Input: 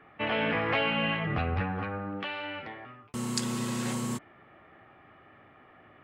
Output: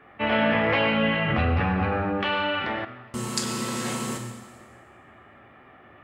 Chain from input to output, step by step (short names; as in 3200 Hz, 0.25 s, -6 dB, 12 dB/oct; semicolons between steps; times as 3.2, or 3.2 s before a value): reverb RT60 1.5 s, pre-delay 6 ms, DRR 1.5 dB; 1.28–2.85 fast leveller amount 50%; gain +3 dB